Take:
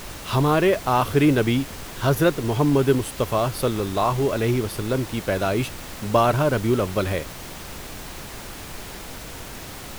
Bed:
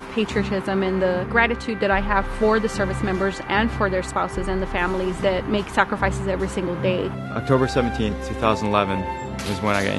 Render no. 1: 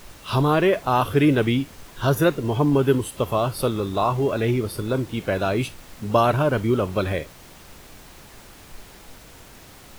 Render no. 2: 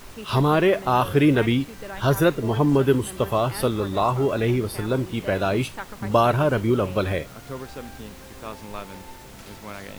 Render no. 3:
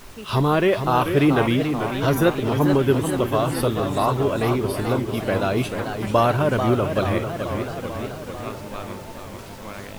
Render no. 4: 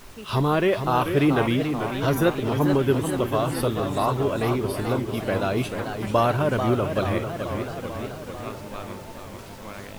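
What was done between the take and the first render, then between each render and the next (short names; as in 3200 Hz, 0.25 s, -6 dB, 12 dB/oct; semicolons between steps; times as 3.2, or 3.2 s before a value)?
noise print and reduce 9 dB
add bed -17 dB
warbling echo 0.438 s, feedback 68%, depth 162 cents, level -7.5 dB
gain -2.5 dB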